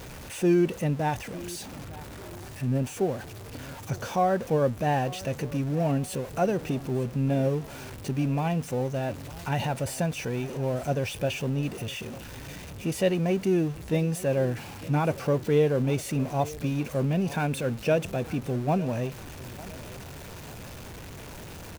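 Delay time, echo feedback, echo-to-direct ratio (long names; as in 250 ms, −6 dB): 902 ms, 38%, −18.5 dB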